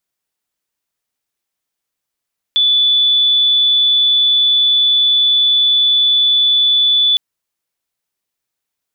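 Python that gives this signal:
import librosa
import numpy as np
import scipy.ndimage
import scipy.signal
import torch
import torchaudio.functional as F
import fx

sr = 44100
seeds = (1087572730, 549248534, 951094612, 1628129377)

y = 10.0 ** (-9.0 / 20.0) * np.sin(2.0 * np.pi * (3470.0 * (np.arange(round(4.61 * sr)) / sr)))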